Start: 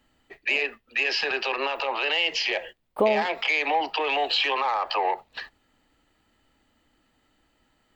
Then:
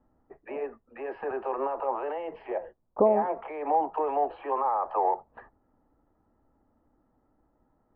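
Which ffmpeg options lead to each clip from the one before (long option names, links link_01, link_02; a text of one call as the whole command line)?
ffmpeg -i in.wav -af "lowpass=frequency=1100:width=0.5412,lowpass=frequency=1100:width=1.3066" out.wav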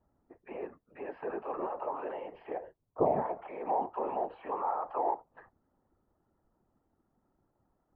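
ffmpeg -i in.wav -af "afftfilt=real='hypot(re,im)*cos(2*PI*random(0))':imag='hypot(re,im)*sin(2*PI*random(1))':win_size=512:overlap=0.75" out.wav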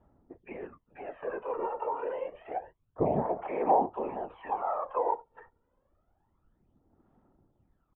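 ffmpeg -i in.wav -af "aphaser=in_gain=1:out_gain=1:delay=2.2:decay=0.66:speed=0.28:type=sinusoidal,aresample=8000,aresample=44100" out.wav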